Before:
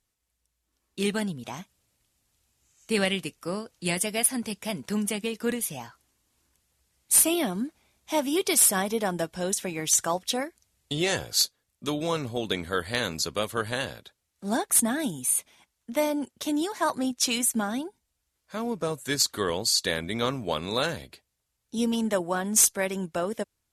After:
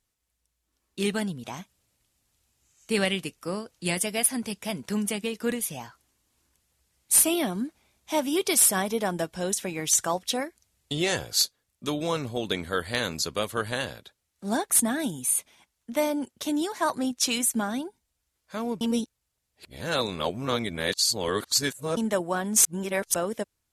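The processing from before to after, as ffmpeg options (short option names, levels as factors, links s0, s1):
-filter_complex "[0:a]asplit=5[s0][s1][s2][s3][s4];[s0]atrim=end=18.812[s5];[s1]atrim=start=18.808:end=21.972,asetpts=PTS-STARTPTS,areverse[s6];[s2]atrim=start=21.968:end=22.652[s7];[s3]atrim=start=22.648:end=23.142,asetpts=PTS-STARTPTS,areverse[s8];[s4]atrim=start=23.138[s9];[s5][s6]acrossfade=d=0.004:c1=hsin:c2=hsin[s10];[s10][s7]acrossfade=d=0.004:c1=hsin:c2=hsin[s11];[s11][s8]acrossfade=d=0.004:c1=hsin:c2=hsin[s12];[s12][s9]acrossfade=d=0.004:c1=hsin:c2=hsin"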